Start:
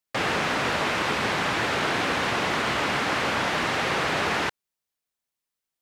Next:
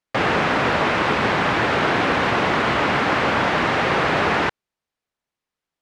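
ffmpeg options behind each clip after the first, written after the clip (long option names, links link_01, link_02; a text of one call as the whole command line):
ffmpeg -i in.wav -af "aemphasis=mode=reproduction:type=75fm,volume=6.5dB" out.wav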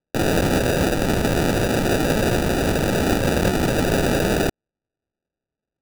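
ffmpeg -i in.wav -af "acrusher=samples=41:mix=1:aa=0.000001" out.wav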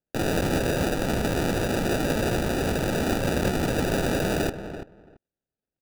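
ffmpeg -i in.wav -filter_complex "[0:a]asplit=2[link_01][link_02];[link_02]adelay=336,lowpass=frequency=1900:poles=1,volume=-10dB,asplit=2[link_03][link_04];[link_04]adelay=336,lowpass=frequency=1900:poles=1,volume=0.16[link_05];[link_01][link_03][link_05]amix=inputs=3:normalize=0,volume=-5.5dB" out.wav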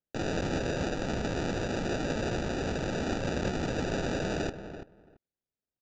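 ffmpeg -i in.wav -af "aresample=16000,aresample=44100,volume=-6.5dB" out.wav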